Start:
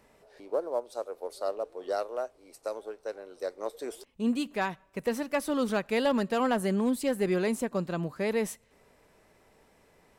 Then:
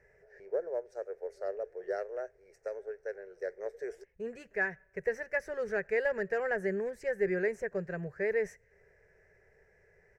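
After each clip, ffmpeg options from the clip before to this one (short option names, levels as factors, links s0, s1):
-af "firequalizer=gain_entry='entry(100,0);entry(180,-7);entry(270,-30);entry(390,1);entry(1100,-19);entry(1700,7);entry(3400,-29);entry(5700,-9);entry(9300,-24)':delay=0.05:min_phase=1"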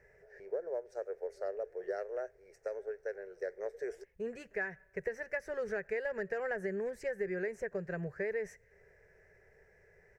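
-af "acompressor=threshold=0.02:ratio=5,volume=1.12"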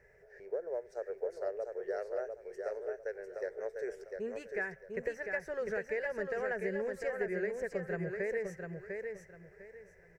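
-af "aecho=1:1:700|1400|2100:0.562|0.146|0.038"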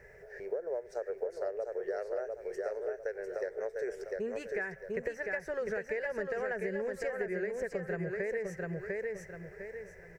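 -af "acompressor=threshold=0.00708:ratio=3,volume=2.66"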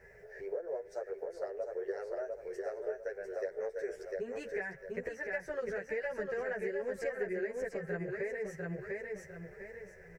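-filter_complex "[0:a]asplit=2[s0][s1];[s1]adelay=10.8,afreqshift=2.7[s2];[s0][s2]amix=inputs=2:normalize=1,volume=1.12"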